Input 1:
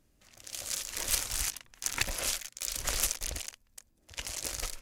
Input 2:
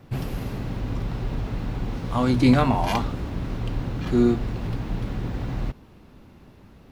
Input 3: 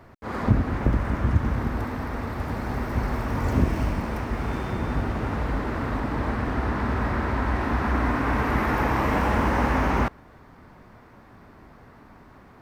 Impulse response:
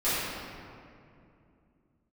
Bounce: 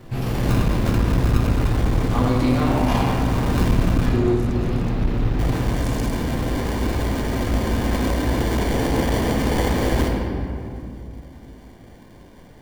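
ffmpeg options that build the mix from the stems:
-filter_complex "[0:a]acompressor=threshold=-35dB:ratio=6,adelay=1400,volume=1.5dB[link_01];[1:a]acompressor=threshold=-24dB:ratio=6,volume=0dB,asplit=3[link_02][link_03][link_04];[link_03]volume=-6.5dB[link_05];[2:a]acrusher=samples=34:mix=1:aa=0.000001,volume=-2.5dB,asplit=3[link_06][link_07][link_08];[link_06]atrim=end=4.07,asetpts=PTS-STARTPTS,afade=type=out:start_time=4.066:duration=0.004:curve=hsin[link_09];[link_07]atrim=start=4.07:end=5.39,asetpts=PTS-STARTPTS,volume=0[link_10];[link_08]atrim=start=5.39,asetpts=PTS-STARTPTS,afade=type=in:duration=0.004:curve=hsin[link_11];[link_09][link_10][link_11]concat=n=3:v=0:a=1,asplit=2[link_12][link_13];[link_13]volume=-10.5dB[link_14];[link_04]apad=whole_len=274021[link_15];[link_01][link_15]sidechaincompress=threshold=-40dB:ratio=8:attack=16:release=185[link_16];[3:a]atrim=start_sample=2205[link_17];[link_05][link_14]amix=inputs=2:normalize=0[link_18];[link_18][link_17]afir=irnorm=-1:irlink=0[link_19];[link_16][link_02][link_12][link_19]amix=inputs=4:normalize=0,aeval=exprs='clip(val(0),-1,0.133)':channel_layout=same"

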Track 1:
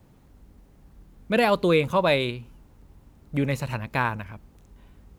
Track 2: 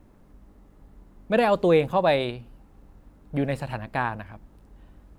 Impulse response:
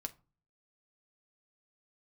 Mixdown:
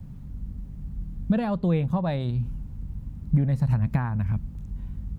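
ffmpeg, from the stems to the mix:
-filter_complex "[0:a]lowshelf=frequency=190:gain=7.5,acompressor=threshold=-27dB:ratio=6,volume=-2dB[link_01];[1:a]highshelf=frequency=4100:gain=-9,volume=-9dB,asplit=2[link_02][link_03];[link_03]apad=whole_len=228838[link_04];[link_01][link_04]sidechaincompress=threshold=-40dB:ratio=8:attack=12:release=230[link_05];[link_05][link_02]amix=inputs=2:normalize=0,lowshelf=frequency=260:width_type=q:width=1.5:gain=11"

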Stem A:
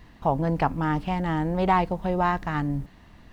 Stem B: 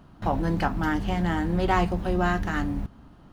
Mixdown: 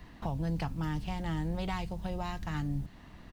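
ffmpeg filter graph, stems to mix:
ffmpeg -i stem1.wav -i stem2.wav -filter_complex "[0:a]volume=-1dB[link_01];[1:a]adelay=1.6,volume=-10.5dB[link_02];[link_01][link_02]amix=inputs=2:normalize=0,acrossover=split=140|3000[link_03][link_04][link_05];[link_04]acompressor=threshold=-38dB:ratio=6[link_06];[link_03][link_06][link_05]amix=inputs=3:normalize=0" out.wav

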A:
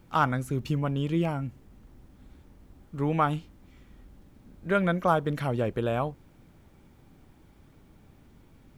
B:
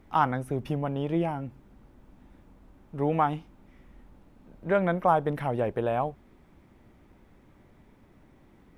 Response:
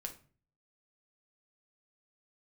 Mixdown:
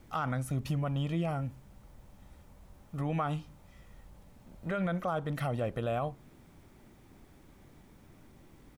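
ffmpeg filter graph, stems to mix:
-filter_complex "[0:a]lowpass=9800,volume=-5dB,asplit=2[link_01][link_02];[link_02]volume=-12dB[link_03];[1:a]bass=frequency=250:gain=-2,treble=frequency=4000:gain=12,acompressor=threshold=-32dB:ratio=6,adelay=1.9,volume=-2.5dB[link_04];[2:a]atrim=start_sample=2205[link_05];[link_03][link_05]afir=irnorm=-1:irlink=0[link_06];[link_01][link_04][link_06]amix=inputs=3:normalize=0,alimiter=limit=-23.5dB:level=0:latency=1:release=37"

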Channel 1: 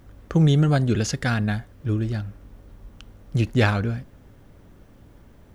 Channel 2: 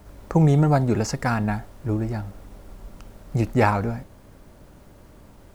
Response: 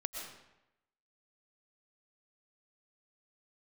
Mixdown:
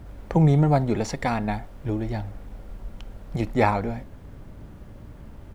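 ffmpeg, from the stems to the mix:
-filter_complex "[0:a]volume=0.5dB[link_01];[1:a]volume=-1,adelay=0.7,volume=-1.5dB,asplit=2[link_02][link_03];[link_03]apad=whole_len=244710[link_04];[link_01][link_04]sidechaincompress=threshold=-24dB:ratio=8:attack=16:release=480[link_05];[link_05][link_02]amix=inputs=2:normalize=0,bass=frequency=250:gain=5,treble=frequency=4000:gain=-6"

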